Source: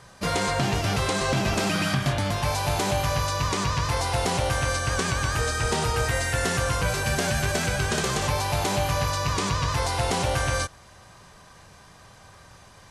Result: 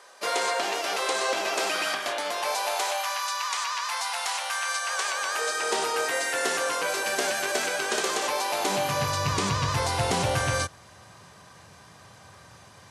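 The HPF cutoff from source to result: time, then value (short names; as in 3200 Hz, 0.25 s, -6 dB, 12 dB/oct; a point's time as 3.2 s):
HPF 24 dB/oct
2.52 s 400 Hz
3.21 s 880 Hz
4.64 s 880 Hz
5.81 s 310 Hz
8.53 s 310 Hz
9.23 s 82 Hz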